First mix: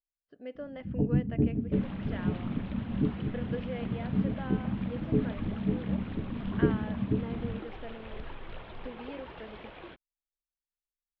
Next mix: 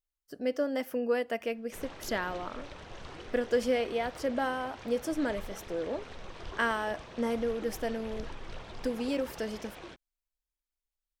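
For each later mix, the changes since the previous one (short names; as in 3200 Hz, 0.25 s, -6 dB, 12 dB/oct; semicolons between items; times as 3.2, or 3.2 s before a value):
speech +11.0 dB; first sound: muted; master: remove steep low-pass 3500 Hz 36 dB/oct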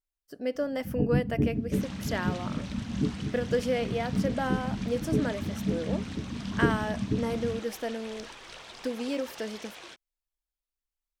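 first sound: unmuted; second sound: add tilt +3.5 dB/oct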